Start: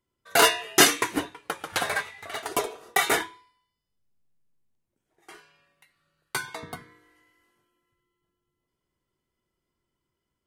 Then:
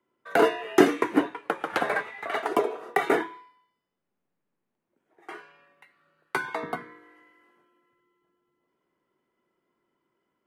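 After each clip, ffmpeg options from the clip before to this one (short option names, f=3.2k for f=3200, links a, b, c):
-filter_complex "[0:a]acrossover=split=190 2400:gain=0.0631 1 0.141[a][b][c];[a][b][c]amix=inputs=3:normalize=0,acrossover=split=480[d][e];[e]acompressor=threshold=-34dB:ratio=5[f];[d][f]amix=inputs=2:normalize=0,volume=8.5dB"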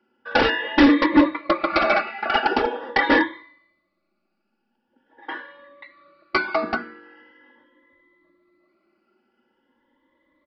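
-af "afftfilt=real='re*pow(10,15/40*sin(2*PI*(1.1*log(max(b,1)*sr/1024/100)/log(2)-(0.43)*(pts-256)/sr)))':imag='im*pow(10,15/40*sin(2*PI*(1.1*log(max(b,1)*sr/1024/100)/log(2)-(0.43)*(pts-256)/sr)))':win_size=1024:overlap=0.75,aresample=11025,asoftclip=type=hard:threshold=-20dB,aresample=44100,aecho=1:1:3.5:0.93,volume=5.5dB"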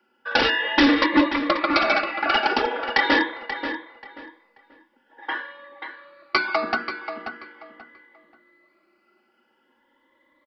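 -filter_complex "[0:a]lowshelf=f=400:g=-11.5,acrossover=split=340|3000[a][b][c];[b]acompressor=threshold=-26dB:ratio=3[d];[a][d][c]amix=inputs=3:normalize=0,asplit=2[e][f];[f]adelay=534,lowpass=f=3.5k:p=1,volume=-9dB,asplit=2[g][h];[h]adelay=534,lowpass=f=3.5k:p=1,volume=0.25,asplit=2[i][j];[j]adelay=534,lowpass=f=3.5k:p=1,volume=0.25[k];[g][i][k]amix=inputs=3:normalize=0[l];[e][l]amix=inputs=2:normalize=0,volume=5.5dB"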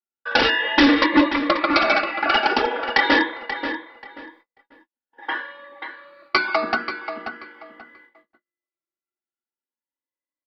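-af "agate=range=-39dB:threshold=-53dB:ratio=16:detection=peak,volume=2dB"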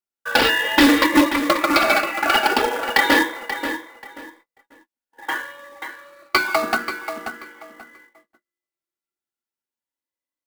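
-af "acrusher=bits=3:mode=log:mix=0:aa=0.000001,volume=1dB"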